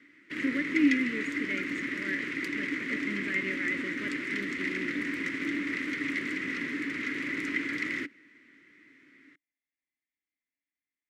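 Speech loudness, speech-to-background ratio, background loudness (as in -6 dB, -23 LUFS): -34.5 LUFS, -2.0 dB, -32.5 LUFS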